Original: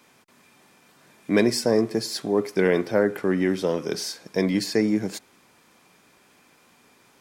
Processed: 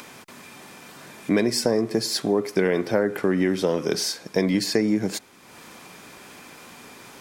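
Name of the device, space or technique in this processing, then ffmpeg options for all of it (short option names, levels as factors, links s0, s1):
upward and downward compression: -af "acompressor=mode=upward:threshold=0.01:ratio=2.5,acompressor=threshold=0.0794:ratio=6,volume=1.78"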